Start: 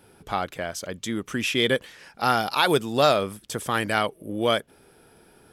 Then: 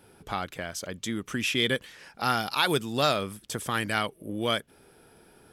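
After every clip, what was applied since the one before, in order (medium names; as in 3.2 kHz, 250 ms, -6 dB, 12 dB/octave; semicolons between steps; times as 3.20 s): dynamic bell 600 Hz, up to -6 dB, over -35 dBFS, Q 0.75; trim -1.5 dB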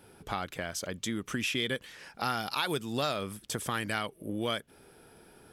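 compression 2.5:1, threshold -30 dBFS, peak gain reduction 8 dB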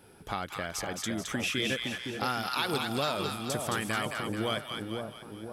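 two-band feedback delay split 990 Hz, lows 513 ms, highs 217 ms, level -4 dB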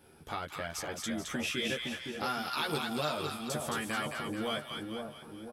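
doubling 13 ms -2.5 dB; trim -5 dB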